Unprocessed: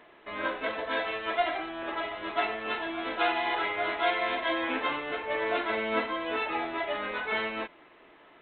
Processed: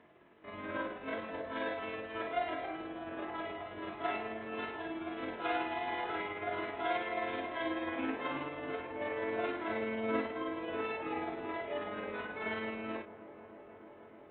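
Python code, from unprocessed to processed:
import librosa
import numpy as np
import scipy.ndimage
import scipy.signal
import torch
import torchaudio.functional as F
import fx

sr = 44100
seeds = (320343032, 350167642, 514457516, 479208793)

p1 = scipy.signal.sosfilt(scipy.signal.butter(2, 3300.0, 'lowpass', fs=sr, output='sos'), x)
p2 = fx.low_shelf(p1, sr, hz=370.0, db=7.0)
p3 = fx.stretch_grains(p2, sr, factor=1.7, grain_ms=108.0)
p4 = scipy.signal.sosfilt(scipy.signal.butter(2, 94.0, 'highpass', fs=sr, output='sos'), p3)
p5 = fx.low_shelf(p4, sr, hz=160.0, db=11.0)
p6 = p5 + fx.echo_wet_lowpass(p5, sr, ms=308, feedback_pct=85, hz=1000.0, wet_db=-14.5, dry=0)
y = F.gain(torch.from_numpy(p6), -8.5).numpy()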